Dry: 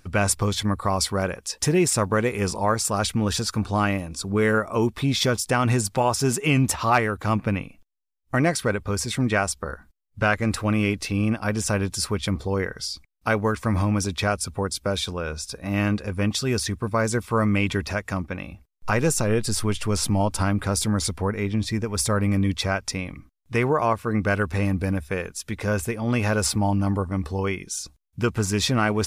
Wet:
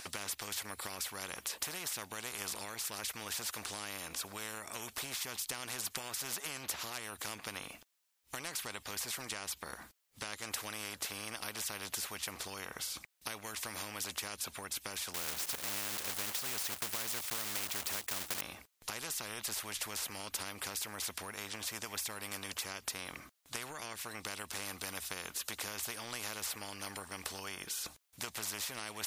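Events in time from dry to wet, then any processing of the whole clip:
15.14–18.43 block floating point 3-bit
whole clip: HPF 860 Hz 6 dB/oct; compressor, threshold -31 dBFS; spectral compressor 4:1; gain -1.5 dB

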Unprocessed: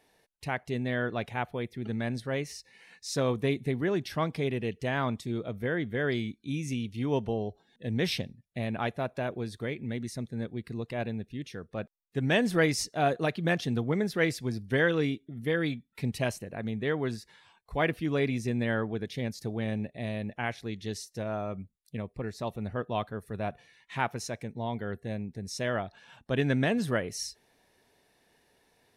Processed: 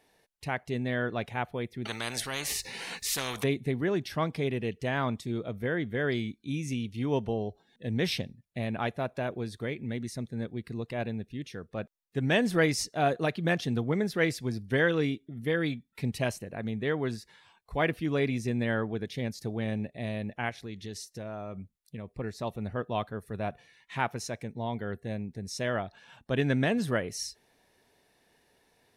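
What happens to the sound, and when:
1.85–3.44 spectral compressor 4:1
20.49–22.16 compressor 3:1, threshold -36 dBFS

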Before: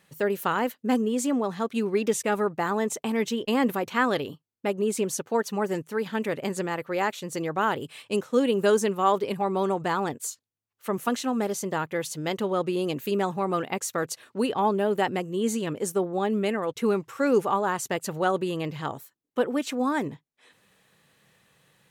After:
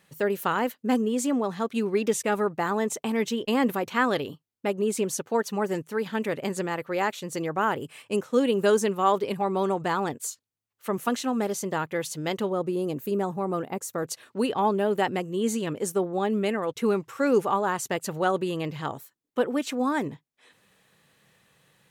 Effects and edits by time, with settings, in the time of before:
7.46–8.24 bell 3800 Hz -8.5 dB 0.51 oct
12.49–14.06 bell 3000 Hz -10.5 dB 2.4 oct

